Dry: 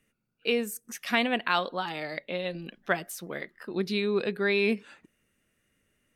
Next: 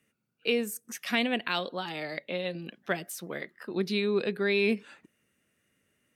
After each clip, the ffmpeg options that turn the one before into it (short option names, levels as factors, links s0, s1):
-filter_complex "[0:a]highpass=91,acrossover=split=680|1700[s0][s1][s2];[s1]acompressor=threshold=0.00794:ratio=6[s3];[s0][s3][s2]amix=inputs=3:normalize=0"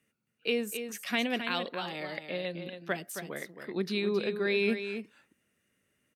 -af "aecho=1:1:269:0.376,volume=0.75"